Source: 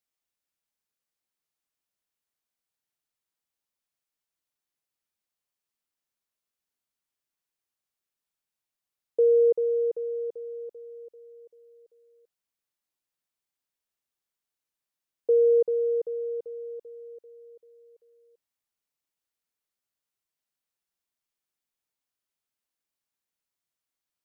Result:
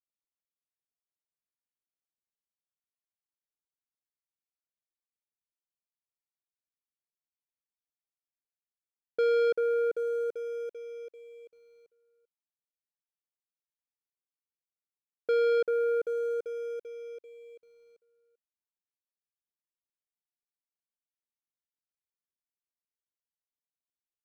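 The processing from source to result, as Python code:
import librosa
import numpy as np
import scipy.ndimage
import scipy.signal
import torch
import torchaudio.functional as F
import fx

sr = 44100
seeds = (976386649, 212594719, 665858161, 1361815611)

y = scipy.signal.medfilt(x, 41)
y = fx.leveller(y, sr, passes=2)
y = y * 10.0 ** (-5.0 / 20.0)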